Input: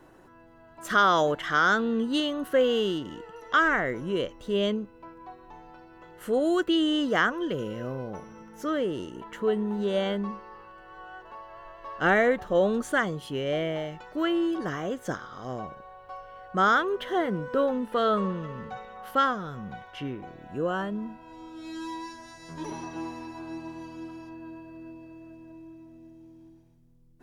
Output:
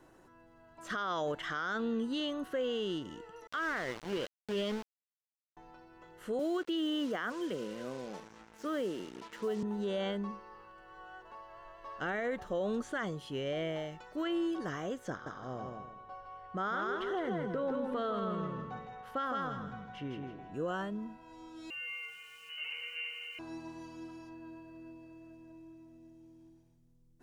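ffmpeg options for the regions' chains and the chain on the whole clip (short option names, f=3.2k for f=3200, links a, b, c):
-filter_complex "[0:a]asettb=1/sr,asplit=3[a][b][c];[a]atrim=end=3.474[d];[b]atrim=start=3.47:end=5.57,asetpts=PTS-STARTPTS,afade=t=in:d=0.004:c=qsin,afade=t=out:st=2.096:d=0.004:c=qsin,lowshelf=f=66:g=-6,aeval=exprs='val(0)*gte(abs(val(0)),0.0299)':c=same[e];[c]atrim=start=5.566[f];[d][e]acrossfade=d=0.004:c1=hsin:c2=qsin[g];[g][f]acrossfade=d=0.004:c1=qsin:c2=hsin,asettb=1/sr,asplit=3[h][i][j];[h]atrim=end=6.394[k];[i]atrim=start=6.39:end=9.63,asetpts=PTS-STARTPTS,afade=t=in:d=0.004:c=qsin,afade=t=out:st=3.236:d=0.004:c=qsin,highpass=f=170:w=0.5412,highpass=f=170:w=1.3066,highshelf=f=4.8k:g=-3.5,acrusher=bits=6:mix=0:aa=0.5[l];[j]atrim=start=9.626[m];[k][l]acrossfade=d=0.004:c1=hsin:c2=qsin[n];[n][m]acrossfade=d=0.004:c1=qsin:c2=hsin,asettb=1/sr,asplit=3[o][p][q];[o]atrim=end=15.104[r];[p]atrim=start=15.1:end=20.54,asetpts=PTS-STARTPTS,afade=t=in:d=0.004:c=qsin,afade=t=out:st=5.436:d=0.004:c=qsin,lowpass=f=2.5k:p=1,aecho=1:1:161|322|483|644:0.631|0.189|0.0568|0.017,atrim=end_sample=239904[s];[q]atrim=start=20.536[t];[r][s]acrossfade=d=0.004:c1=hsin:c2=qsin[u];[u][t]acrossfade=d=0.004:c1=qsin:c2=hsin,asettb=1/sr,asplit=3[v][w][x];[v]atrim=end=21.704[y];[w]atrim=start=21.7:end=23.39,asetpts=PTS-STARTPTS,afade=t=in:d=0.004:c=qsin,afade=t=out:st=1.686:d=0.004:c=qsin,equalizer=f=84:t=o:w=0.93:g=10.5,lowpass=f=2.6k:t=q:w=0.5098,lowpass=f=2.6k:t=q:w=0.6013,lowpass=f=2.6k:t=q:w=0.9,lowpass=f=2.6k:t=q:w=2.563,afreqshift=-3100,aeval=exprs='val(0)*gte(abs(val(0)),0.00251)':c=same[z];[x]atrim=start=23.386[aa];[y][z]acrossfade=d=0.004:c1=hsin:c2=qsin[ab];[ab][aa]acrossfade=d=0.004:c1=qsin:c2=hsin,acrossover=split=5200[ac][ad];[ad]acompressor=threshold=-57dB:ratio=4:attack=1:release=60[ae];[ac][ae]amix=inputs=2:normalize=0,equalizer=f=7k:w=0.87:g=5,alimiter=limit=-20.5dB:level=0:latency=1:release=35,volume=-6.5dB"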